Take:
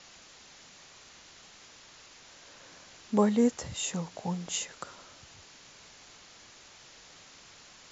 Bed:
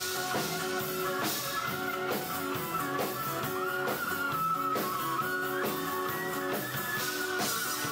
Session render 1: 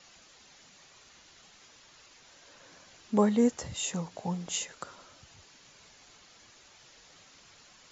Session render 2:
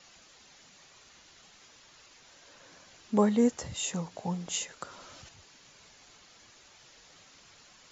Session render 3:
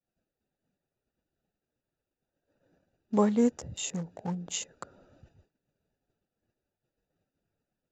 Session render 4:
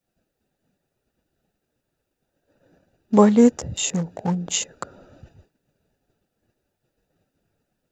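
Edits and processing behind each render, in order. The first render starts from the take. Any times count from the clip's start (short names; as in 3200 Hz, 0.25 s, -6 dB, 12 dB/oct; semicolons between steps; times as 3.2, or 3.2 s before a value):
denoiser 6 dB, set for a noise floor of -54 dBFS
4.84–5.29 fast leveller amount 70%
Wiener smoothing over 41 samples; expander -56 dBFS
gain +10.5 dB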